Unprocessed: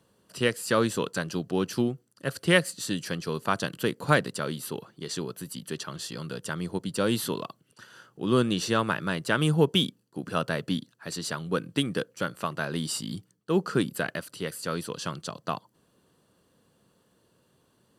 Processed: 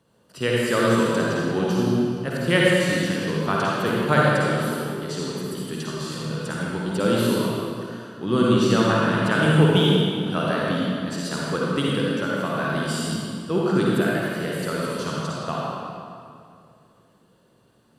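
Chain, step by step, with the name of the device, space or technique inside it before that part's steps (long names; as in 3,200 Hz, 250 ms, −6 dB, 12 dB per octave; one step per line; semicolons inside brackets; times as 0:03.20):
swimming-pool hall (convolution reverb RT60 2.4 s, pre-delay 46 ms, DRR −5.5 dB; high-shelf EQ 4,700 Hz −5.5 dB)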